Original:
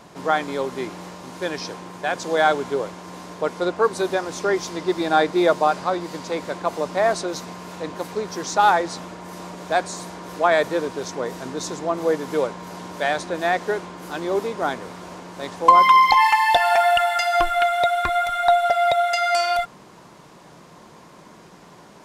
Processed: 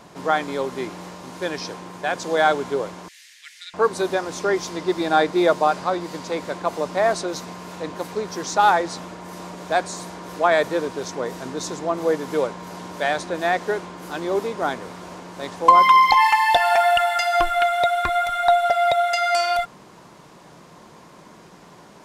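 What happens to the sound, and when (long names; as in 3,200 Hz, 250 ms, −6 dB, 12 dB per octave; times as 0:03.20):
0:03.08–0:03.74: Chebyshev high-pass filter 1,800 Hz, order 5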